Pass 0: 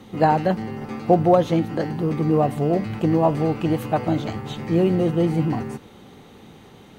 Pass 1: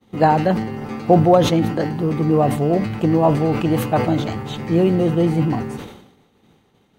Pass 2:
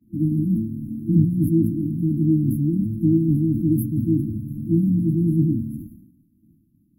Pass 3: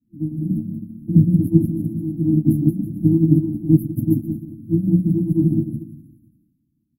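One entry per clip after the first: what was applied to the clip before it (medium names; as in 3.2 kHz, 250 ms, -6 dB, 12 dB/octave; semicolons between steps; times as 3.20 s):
expander -35 dBFS; decay stretcher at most 69 dB/s; trim +2.5 dB
FFT band-reject 340–10000 Hz
coarse spectral quantiser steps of 15 dB; bouncing-ball echo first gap 180 ms, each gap 0.8×, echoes 5; upward expansion 2.5:1, over -24 dBFS; trim +5.5 dB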